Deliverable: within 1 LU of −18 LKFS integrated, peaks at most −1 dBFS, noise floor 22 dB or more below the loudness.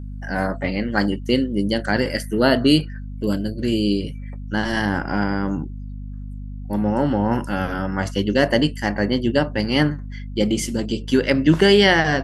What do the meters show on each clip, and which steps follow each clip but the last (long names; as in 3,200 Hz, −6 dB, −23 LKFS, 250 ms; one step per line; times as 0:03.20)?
mains hum 50 Hz; hum harmonics up to 250 Hz; level of the hum −29 dBFS; integrated loudness −20.5 LKFS; sample peak −1.5 dBFS; target loudness −18.0 LKFS
→ hum removal 50 Hz, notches 5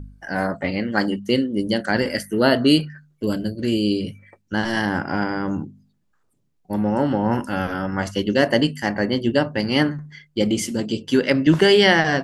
mains hum none found; integrated loudness −21.0 LKFS; sample peak −2.0 dBFS; target loudness −18.0 LKFS
→ level +3 dB
brickwall limiter −1 dBFS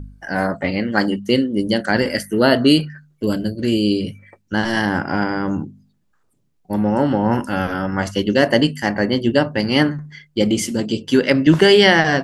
integrated loudness −18.0 LKFS; sample peak −1.0 dBFS; background noise floor −63 dBFS